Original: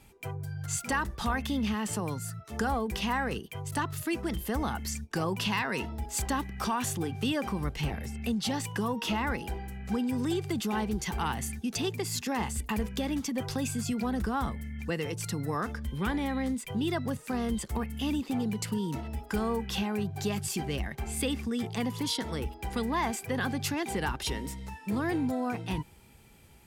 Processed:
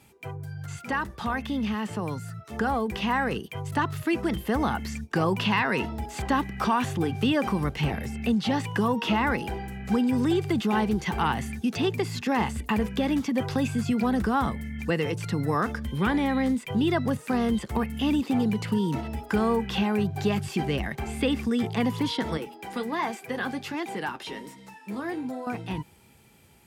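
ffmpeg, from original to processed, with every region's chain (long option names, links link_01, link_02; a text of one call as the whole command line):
ffmpeg -i in.wav -filter_complex "[0:a]asettb=1/sr,asplit=3[link_01][link_02][link_03];[link_01]atrim=end=22.374[link_04];[link_02]atrim=start=22.37:end=25.47,asetpts=PTS-STARTPTS,afade=type=in:duration=0.004:curve=qsin,afade=type=out:start_time=3.096:duration=0.004:curve=qsin,highpass=210,flanger=delay=6:depth=5.5:regen=-49:speed=1.3:shape=sinusoidal[link_05];[link_03]atrim=start=25.466[link_06];[link_04][link_05]acrossfade=duration=0.004:curve1=hsin:curve2=qsin[link_07];[link_07][link_06]acrossfade=duration=0.004:curve1=qsin:curve2=hsin,acrossover=split=3500[link_08][link_09];[link_09]acompressor=threshold=-52dB:ratio=4:attack=1:release=60[link_10];[link_08][link_10]amix=inputs=2:normalize=0,highpass=86,dynaudnorm=framelen=350:gausssize=17:maxgain=5dB,volume=1.5dB" out.wav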